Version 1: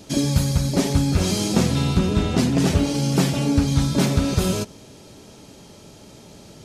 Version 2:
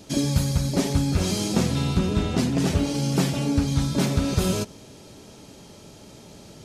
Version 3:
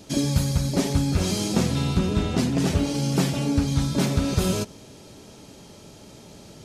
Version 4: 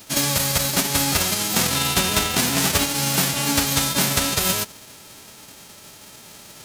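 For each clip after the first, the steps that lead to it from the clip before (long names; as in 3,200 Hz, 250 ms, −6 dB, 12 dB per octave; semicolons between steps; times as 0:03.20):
speech leveller; level −3 dB
no processing that can be heard
spectral envelope flattened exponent 0.3; boost into a limiter +7.5 dB; level −5.5 dB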